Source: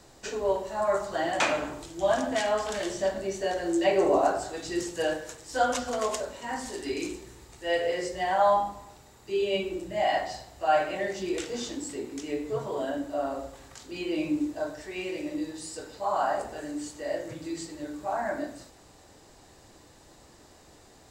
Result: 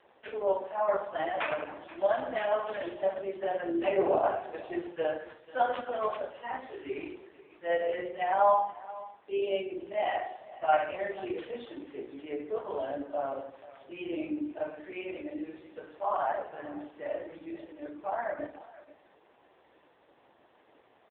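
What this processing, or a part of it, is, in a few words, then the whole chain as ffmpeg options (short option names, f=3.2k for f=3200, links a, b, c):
satellite phone: -filter_complex "[0:a]asplit=3[a][b][c];[a]afade=t=out:st=10.95:d=0.02[d];[b]lowpass=9.4k,afade=t=in:st=10.95:d=0.02,afade=t=out:st=11.57:d=0.02[e];[c]afade=t=in:st=11.57:d=0.02[f];[d][e][f]amix=inputs=3:normalize=0,highpass=380,lowpass=3.3k,aecho=1:1:486:0.119" -ar 8000 -c:a libopencore_amrnb -b:a 4750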